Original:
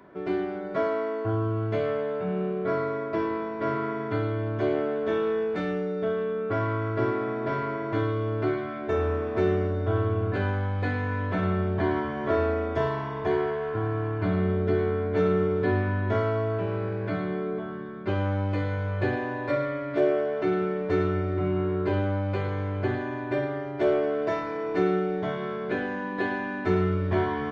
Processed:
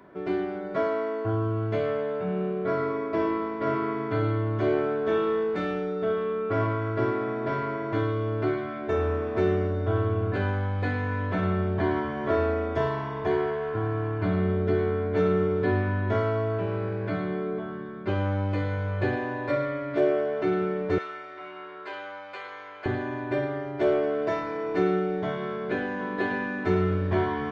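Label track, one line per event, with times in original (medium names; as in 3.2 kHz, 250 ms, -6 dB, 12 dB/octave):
2.740000	6.590000	reverb throw, RT60 0.81 s, DRR 5.5 dB
20.980000	22.860000	high-pass 1 kHz
25.400000	26.040000	echo throw 590 ms, feedback 45%, level -8.5 dB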